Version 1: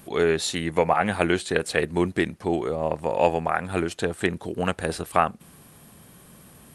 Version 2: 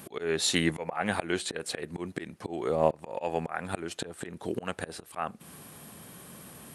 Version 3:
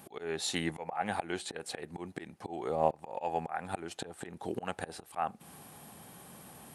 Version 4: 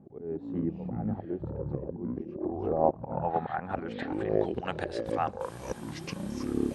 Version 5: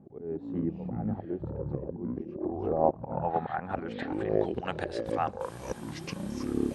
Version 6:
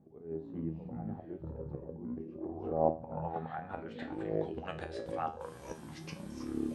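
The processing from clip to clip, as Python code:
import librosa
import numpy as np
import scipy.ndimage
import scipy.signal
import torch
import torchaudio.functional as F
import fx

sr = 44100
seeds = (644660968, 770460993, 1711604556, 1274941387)

y1 = fx.auto_swell(x, sr, attack_ms=370.0)
y1 = fx.highpass(y1, sr, hz=150.0, slope=6)
y1 = y1 * librosa.db_to_amplitude(3.0)
y2 = fx.peak_eq(y1, sr, hz=800.0, db=9.5, octaves=0.34)
y2 = fx.rider(y2, sr, range_db=3, speed_s=2.0)
y2 = y2 * librosa.db_to_amplitude(-7.0)
y3 = fx.echo_pitch(y2, sr, ms=100, semitones=-7, count=2, db_per_echo=-3.0)
y3 = fx.filter_sweep_lowpass(y3, sr, from_hz=350.0, to_hz=7000.0, start_s=2.0, end_s=5.38, q=0.97)
y3 = y3 * librosa.db_to_amplitude(3.0)
y4 = y3
y5 = fx.comb_fb(y4, sr, f0_hz=80.0, decay_s=0.34, harmonics='all', damping=0.0, mix_pct=80)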